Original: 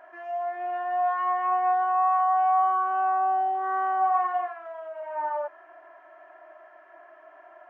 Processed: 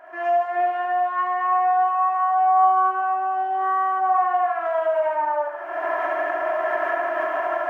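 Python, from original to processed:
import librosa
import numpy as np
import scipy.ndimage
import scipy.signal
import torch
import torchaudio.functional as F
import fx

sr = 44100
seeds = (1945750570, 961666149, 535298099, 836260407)

y = fx.recorder_agc(x, sr, target_db=-19.5, rise_db_per_s=47.0, max_gain_db=30)
y = fx.echo_feedback(y, sr, ms=72, feedback_pct=58, wet_db=-6.0)
y = y * 10.0 ** (2.5 / 20.0)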